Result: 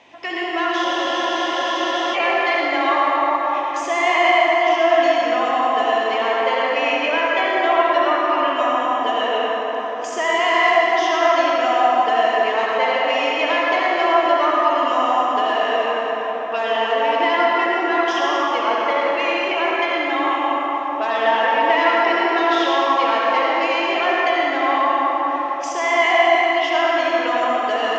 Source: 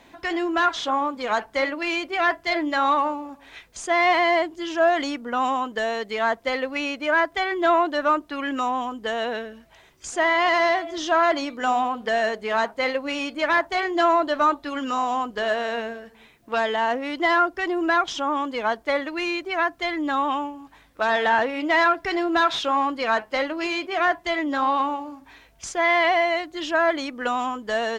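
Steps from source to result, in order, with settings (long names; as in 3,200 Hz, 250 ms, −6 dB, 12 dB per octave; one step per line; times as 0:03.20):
in parallel at +2 dB: downward compressor, threshold −30 dBFS, peak gain reduction 14.5 dB
on the sum: mains hum 50 Hz, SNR 23 dB
loudspeaker in its box 430–6,000 Hz, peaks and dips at 1,500 Hz −8 dB, 2,800 Hz +5 dB, 4,100 Hz −8 dB
convolution reverb RT60 5.4 s, pre-delay 58 ms, DRR −6 dB
frozen spectrum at 0:00.87, 1.27 s
level −3 dB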